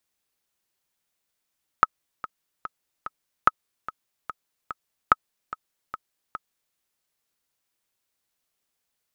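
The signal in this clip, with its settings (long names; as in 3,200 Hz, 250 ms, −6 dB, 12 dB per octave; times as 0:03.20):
click track 146 BPM, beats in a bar 4, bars 3, 1,280 Hz, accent 17 dB −1.5 dBFS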